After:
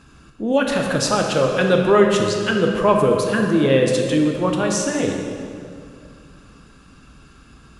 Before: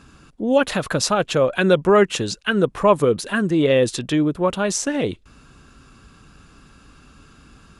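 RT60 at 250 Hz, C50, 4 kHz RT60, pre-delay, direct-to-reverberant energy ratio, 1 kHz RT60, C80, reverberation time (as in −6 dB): 3.0 s, 3.0 dB, 1.7 s, 9 ms, 1.5 dB, 2.2 s, 4.0 dB, 2.4 s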